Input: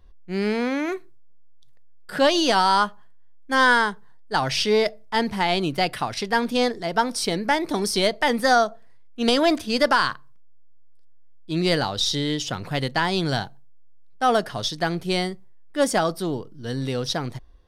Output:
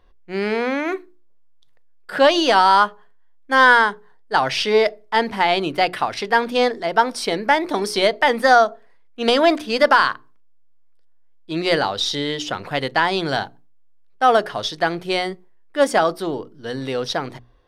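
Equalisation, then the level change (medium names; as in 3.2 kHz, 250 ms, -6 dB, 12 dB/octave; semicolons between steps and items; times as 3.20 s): tone controls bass -11 dB, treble -9 dB; hum notches 60/120/180/240/300/360/420 Hz; +5.5 dB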